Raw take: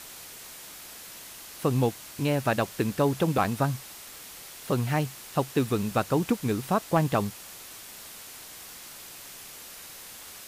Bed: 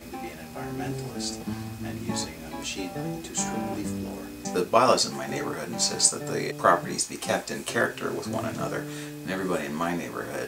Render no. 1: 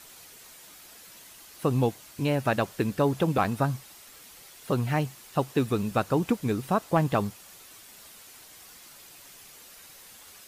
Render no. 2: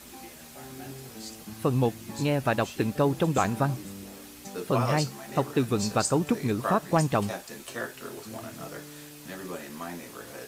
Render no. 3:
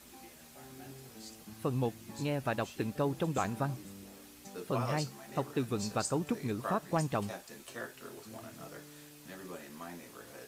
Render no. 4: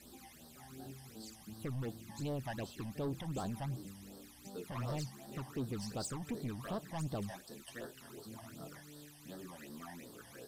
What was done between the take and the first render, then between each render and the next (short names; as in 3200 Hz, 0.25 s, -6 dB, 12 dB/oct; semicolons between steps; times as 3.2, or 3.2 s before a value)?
denoiser 7 dB, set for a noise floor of -45 dBFS
add bed -10 dB
gain -8 dB
soft clip -34 dBFS, distortion -8 dB; phaser stages 12, 2.7 Hz, lowest notch 400–2400 Hz